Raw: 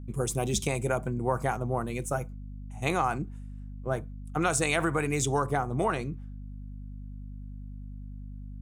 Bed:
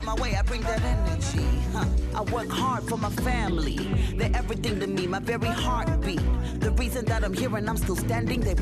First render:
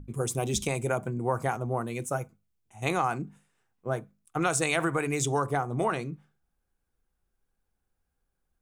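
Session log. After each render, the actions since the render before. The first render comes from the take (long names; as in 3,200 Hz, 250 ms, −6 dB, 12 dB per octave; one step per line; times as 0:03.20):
mains-hum notches 50/100/150/200/250 Hz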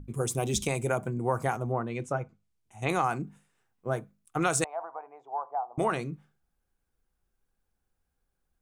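0:01.70–0:02.89: treble cut that deepens with the level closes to 2,700 Hz, closed at −27.5 dBFS
0:04.64–0:05.78: flat-topped band-pass 800 Hz, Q 2.5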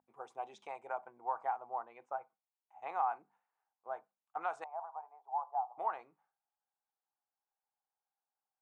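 four-pole ladder band-pass 920 Hz, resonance 65%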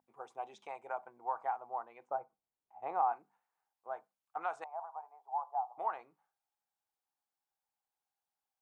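0:02.07–0:03.13: tilt shelving filter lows +9 dB, about 1,100 Hz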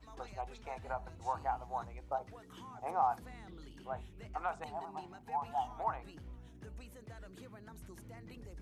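mix in bed −25.5 dB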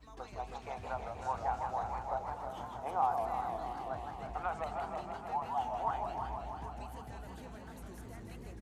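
single-tap delay 352 ms −10 dB
feedback echo with a swinging delay time 159 ms, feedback 78%, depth 201 cents, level −5.5 dB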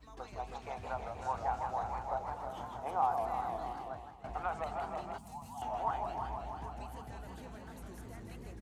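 0:03.68–0:04.24: fade out, to −14 dB
0:05.18–0:05.62: drawn EQ curve 230 Hz 0 dB, 400 Hz −18 dB, 1,000 Hz −10 dB, 1,500 Hz −19 dB, 8,600 Hz +12 dB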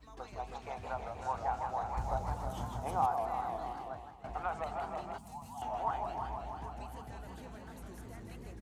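0:01.97–0:03.06: bass and treble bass +12 dB, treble +10 dB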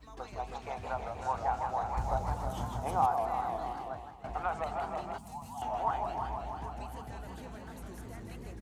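level +3 dB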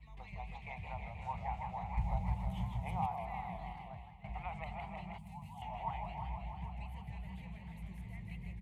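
drawn EQ curve 120 Hz 0 dB, 180 Hz +5 dB, 260 Hz −20 dB, 470 Hz −18 dB, 930 Hz −7 dB, 1,500 Hz −24 dB, 2,100 Hz +5 dB, 5,800 Hz −20 dB, 10,000 Hz −14 dB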